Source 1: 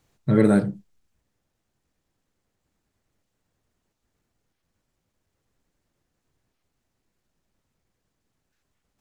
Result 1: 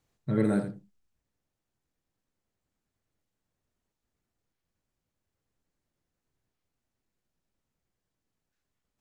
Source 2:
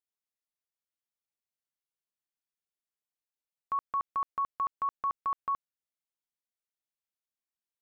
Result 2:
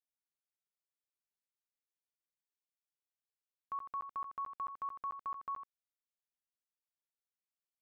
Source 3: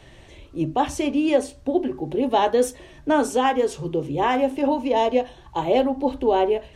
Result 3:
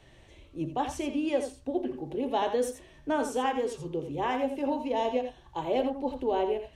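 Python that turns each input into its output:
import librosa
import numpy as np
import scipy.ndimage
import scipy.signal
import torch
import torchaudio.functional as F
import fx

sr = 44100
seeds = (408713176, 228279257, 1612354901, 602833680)

y = x + 10.0 ** (-9.0 / 20.0) * np.pad(x, (int(84 * sr / 1000.0), 0))[:len(x)]
y = y * 10.0 ** (-9.0 / 20.0)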